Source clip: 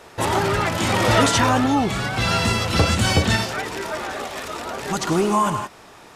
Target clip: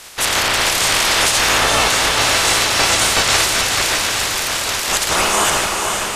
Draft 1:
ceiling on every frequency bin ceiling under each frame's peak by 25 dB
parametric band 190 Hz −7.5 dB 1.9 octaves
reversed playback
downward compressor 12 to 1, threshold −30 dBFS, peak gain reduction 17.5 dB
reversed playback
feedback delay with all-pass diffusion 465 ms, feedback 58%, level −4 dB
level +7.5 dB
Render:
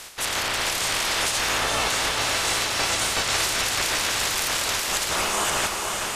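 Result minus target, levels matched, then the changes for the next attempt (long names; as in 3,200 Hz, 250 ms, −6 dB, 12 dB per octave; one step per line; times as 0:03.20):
downward compressor: peak gain reduction +9 dB
change: downward compressor 12 to 1, threshold −20 dBFS, peak gain reduction 8.5 dB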